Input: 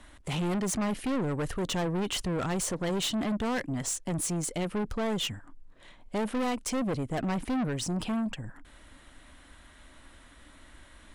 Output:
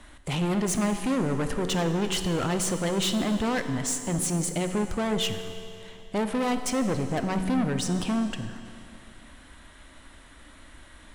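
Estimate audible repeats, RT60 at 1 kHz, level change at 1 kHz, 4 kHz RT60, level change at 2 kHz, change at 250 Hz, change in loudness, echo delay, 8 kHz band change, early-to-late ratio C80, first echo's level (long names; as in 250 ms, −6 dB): no echo audible, 2.7 s, +3.5 dB, 2.5 s, +4.0 dB, +4.0 dB, +3.5 dB, no echo audible, +3.5 dB, 9.0 dB, no echo audible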